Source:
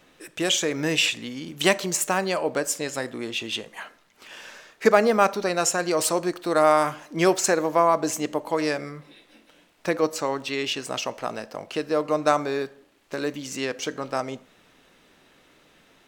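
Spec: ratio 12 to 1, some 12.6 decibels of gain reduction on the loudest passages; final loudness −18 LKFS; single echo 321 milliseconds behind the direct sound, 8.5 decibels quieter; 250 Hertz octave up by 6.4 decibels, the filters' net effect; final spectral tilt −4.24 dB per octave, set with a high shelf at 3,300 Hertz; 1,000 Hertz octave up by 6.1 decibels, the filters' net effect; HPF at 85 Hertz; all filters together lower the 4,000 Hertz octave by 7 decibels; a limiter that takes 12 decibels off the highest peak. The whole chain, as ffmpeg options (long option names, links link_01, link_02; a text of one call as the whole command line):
ffmpeg -i in.wav -af "highpass=85,equalizer=frequency=250:width_type=o:gain=8.5,equalizer=frequency=1000:width_type=o:gain=8,highshelf=frequency=3300:gain=-4,equalizer=frequency=4000:width_type=o:gain=-8,acompressor=threshold=-20dB:ratio=12,alimiter=limit=-19dB:level=0:latency=1,aecho=1:1:321:0.376,volume=12dB" out.wav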